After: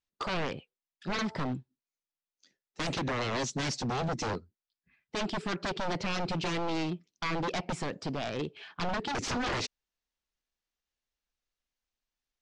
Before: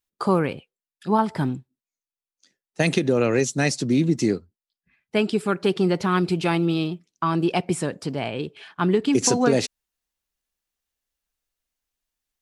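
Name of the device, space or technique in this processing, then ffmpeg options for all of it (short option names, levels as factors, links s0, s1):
synthesiser wavefolder: -af "aeval=exprs='0.075*(abs(mod(val(0)/0.075+3,4)-2)-1)':c=same,lowpass=f=6400:w=0.5412,lowpass=f=6400:w=1.3066,volume=0.631"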